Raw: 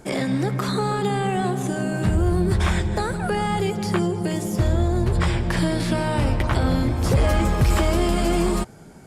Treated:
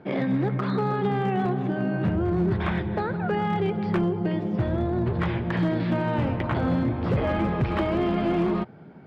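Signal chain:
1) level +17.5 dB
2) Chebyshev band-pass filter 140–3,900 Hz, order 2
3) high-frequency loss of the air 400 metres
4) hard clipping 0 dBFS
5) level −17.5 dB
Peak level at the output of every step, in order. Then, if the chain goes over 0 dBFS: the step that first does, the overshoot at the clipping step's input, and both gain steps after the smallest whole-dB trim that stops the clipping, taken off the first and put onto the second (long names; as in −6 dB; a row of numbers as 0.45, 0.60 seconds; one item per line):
+6.5, +9.0, +8.0, 0.0, −17.5 dBFS
step 1, 8.0 dB
step 1 +9.5 dB, step 5 −9.5 dB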